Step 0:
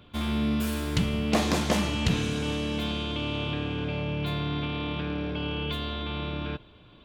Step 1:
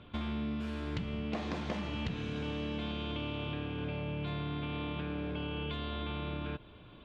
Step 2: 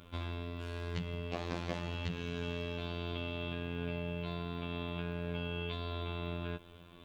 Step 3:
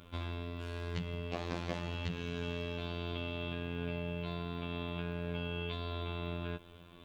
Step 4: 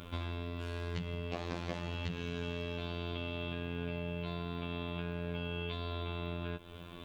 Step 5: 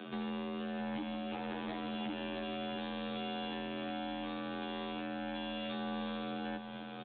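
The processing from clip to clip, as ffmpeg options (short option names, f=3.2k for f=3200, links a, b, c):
-af "lowpass=3.3k,acompressor=threshold=-34dB:ratio=6"
-af "highshelf=f=5.7k:g=5,acrusher=bits=11:mix=0:aa=0.000001,afftfilt=real='hypot(re,im)*cos(PI*b)':imag='0':win_size=2048:overlap=0.75,volume=2dB"
-af anull
-af "acompressor=threshold=-47dB:ratio=2,volume=7.5dB"
-af "afreqshift=130,aresample=8000,asoftclip=type=hard:threshold=-38dB,aresample=44100,aecho=1:1:663:0.422,volume=2dB"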